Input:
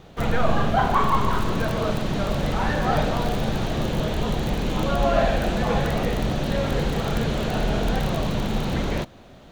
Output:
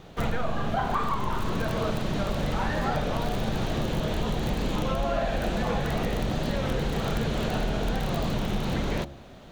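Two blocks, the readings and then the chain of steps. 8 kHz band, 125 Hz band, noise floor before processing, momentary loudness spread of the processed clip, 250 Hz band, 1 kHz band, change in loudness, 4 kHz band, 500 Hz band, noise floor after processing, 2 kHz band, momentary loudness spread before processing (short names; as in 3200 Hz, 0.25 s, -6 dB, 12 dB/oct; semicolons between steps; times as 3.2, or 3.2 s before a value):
-3.5 dB, -4.5 dB, -46 dBFS, 2 LU, -4.0 dB, -5.5 dB, -4.5 dB, -4.0 dB, -5.0 dB, -45 dBFS, -4.5 dB, 5 LU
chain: de-hum 69.1 Hz, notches 12; compressor, threshold -23 dBFS, peak gain reduction 9 dB; record warp 33 1/3 rpm, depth 100 cents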